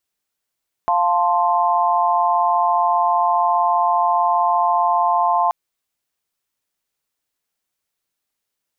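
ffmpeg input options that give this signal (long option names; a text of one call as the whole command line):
ffmpeg -f lavfi -i "aevalsrc='0.119*(sin(2*PI*698.46*t)+sin(2*PI*880*t)+sin(2*PI*1046.5*t))':duration=4.63:sample_rate=44100" out.wav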